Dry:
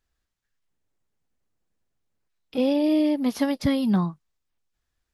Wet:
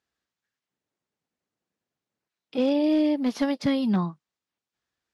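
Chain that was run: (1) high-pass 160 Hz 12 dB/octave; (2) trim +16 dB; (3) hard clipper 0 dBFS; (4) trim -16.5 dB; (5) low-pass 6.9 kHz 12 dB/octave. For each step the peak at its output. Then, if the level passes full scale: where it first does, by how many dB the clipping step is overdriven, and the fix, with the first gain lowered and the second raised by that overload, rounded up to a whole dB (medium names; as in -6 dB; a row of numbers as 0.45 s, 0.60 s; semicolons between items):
-12.0 dBFS, +4.0 dBFS, 0.0 dBFS, -16.5 dBFS, -16.5 dBFS; step 2, 4.0 dB; step 2 +12 dB, step 4 -12.5 dB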